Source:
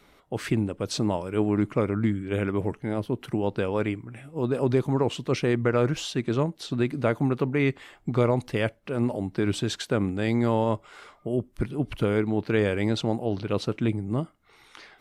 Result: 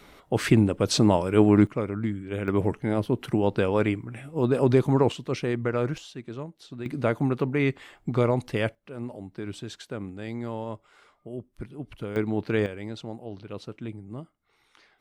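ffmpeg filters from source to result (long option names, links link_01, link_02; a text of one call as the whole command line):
ffmpeg -i in.wav -af "asetnsamples=nb_out_samples=441:pad=0,asendcmd='1.67 volume volume -4dB;2.48 volume volume 3dB;5.12 volume volume -3.5dB;5.98 volume volume -11.5dB;6.86 volume volume -0.5dB;8.75 volume volume -10dB;12.16 volume volume -1.5dB;12.66 volume volume -11dB',volume=6dB" out.wav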